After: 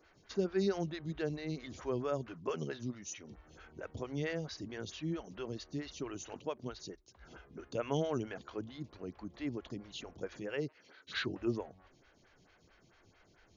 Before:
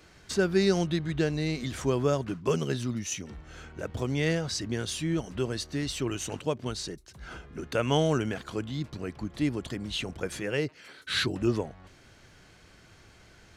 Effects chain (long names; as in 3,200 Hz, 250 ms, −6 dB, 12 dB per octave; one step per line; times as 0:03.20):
linear-phase brick-wall low-pass 7,100 Hz
phaser with staggered stages 4.5 Hz
level −6.5 dB